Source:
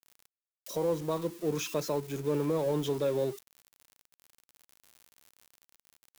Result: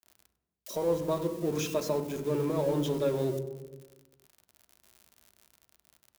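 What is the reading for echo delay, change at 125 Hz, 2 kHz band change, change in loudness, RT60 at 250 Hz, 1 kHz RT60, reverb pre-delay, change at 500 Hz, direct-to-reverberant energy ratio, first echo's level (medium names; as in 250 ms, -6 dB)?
99 ms, +2.0 dB, 0.0 dB, +1.0 dB, 1.4 s, 1.0 s, 3 ms, +1.0 dB, 6.5 dB, -17.5 dB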